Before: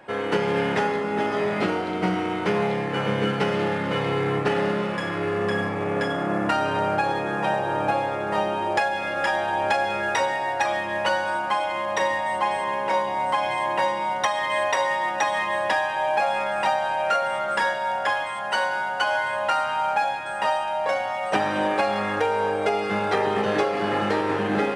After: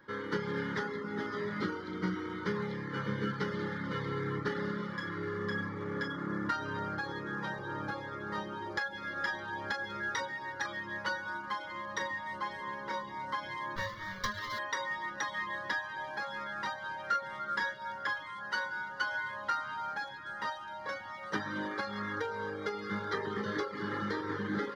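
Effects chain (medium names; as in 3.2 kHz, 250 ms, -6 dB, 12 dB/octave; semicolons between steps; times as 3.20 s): 13.76–14.59 s: comb filter that takes the minimum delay 1.8 ms; reverb removal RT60 0.59 s; static phaser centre 2.6 kHz, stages 6; trim -6.5 dB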